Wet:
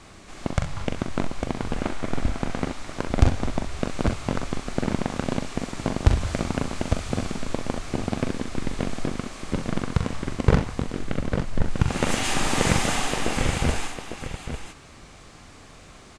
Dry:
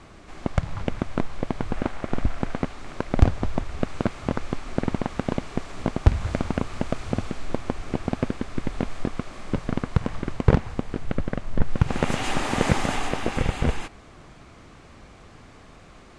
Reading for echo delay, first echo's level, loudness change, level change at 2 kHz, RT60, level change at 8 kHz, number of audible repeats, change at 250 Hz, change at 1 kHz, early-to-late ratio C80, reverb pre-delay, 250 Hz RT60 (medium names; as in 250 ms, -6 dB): 42 ms, -7.0 dB, +0.5 dB, +2.5 dB, no reverb, +8.5 dB, 2, 0.0 dB, +0.5 dB, no reverb, no reverb, no reverb